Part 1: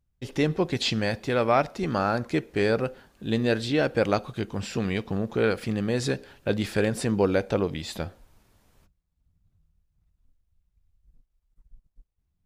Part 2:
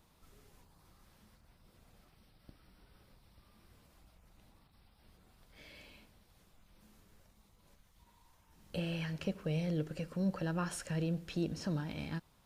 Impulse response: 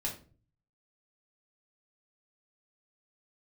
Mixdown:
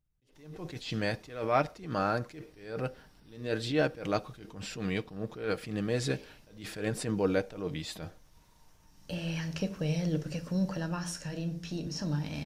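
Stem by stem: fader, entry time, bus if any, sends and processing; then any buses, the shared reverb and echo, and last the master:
−4.5 dB, 0.00 s, no send, notch filter 850 Hz, Q 15; comb filter 6.5 ms, depth 37%; level that may rise only so fast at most 110 dB per second
+1.5 dB, 0.35 s, send −8.5 dB, parametric band 5,700 Hz +10.5 dB 0.46 octaves; pitch vibrato 3.1 Hz 27 cents; automatic ducking −7 dB, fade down 0.45 s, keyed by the first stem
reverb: on, RT60 0.40 s, pre-delay 3 ms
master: no processing

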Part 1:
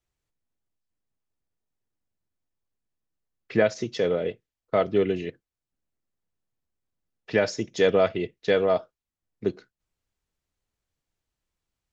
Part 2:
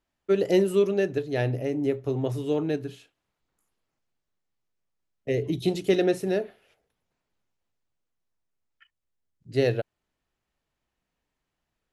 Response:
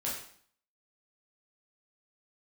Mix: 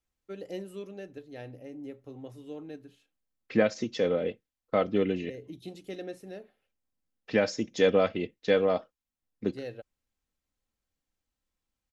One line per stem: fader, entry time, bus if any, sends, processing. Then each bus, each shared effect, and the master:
−3.5 dB, 0.00 s, no send, parametric band 220 Hz +3 dB
−16.0 dB, 0.00 s, no send, noise gate with hold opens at −53 dBFS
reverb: not used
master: comb filter 3.8 ms, depth 38%

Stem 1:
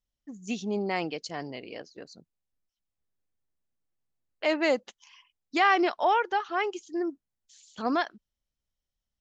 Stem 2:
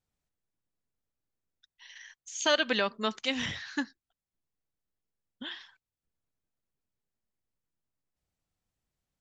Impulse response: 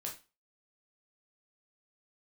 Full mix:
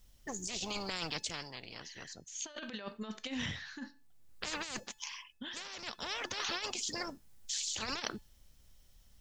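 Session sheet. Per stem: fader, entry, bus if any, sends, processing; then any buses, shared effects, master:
+1.5 dB, 0.00 s, no send, high-shelf EQ 3,800 Hz +5 dB; every bin compressed towards the loudest bin 10 to 1; automatic ducking −13 dB, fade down 0.65 s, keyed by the second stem
−2.5 dB, 0.00 s, send −11 dB, no processing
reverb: on, RT60 0.30 s, pre-delay 6 ms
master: low-shelf EQ 200 Hz +7 dB; compressor whose output falls as the input rises −32 dBFS, ratio −0.5; tuned comb filter 870 Hz, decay 0.38 s, mix 50%

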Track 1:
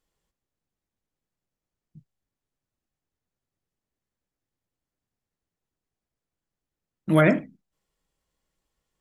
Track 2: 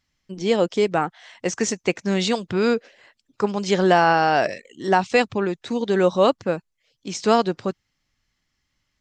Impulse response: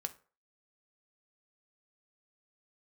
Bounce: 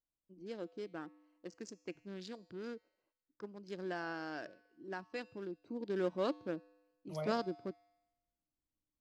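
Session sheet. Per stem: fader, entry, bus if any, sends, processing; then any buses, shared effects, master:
−13.5 dB, 0.00 s, no send, phaser with its sweep stopped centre 690 Hz, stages 4
0:05.22 −20 dB → 0:05.78 −12.5 dB, 0.00 s, no send, adaptive Wiener filter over 25 samples; thirty-one-band graphic EQ 100 Hz −9 dB, 315 Hz +11 dB, 800 Hz −5 dB, 1,600 Hz +7 dB, 5,000 Hz +9 dB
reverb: not used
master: tuned comb filter 100 Hz, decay 1.1 s, harmonics odd, mix 50%

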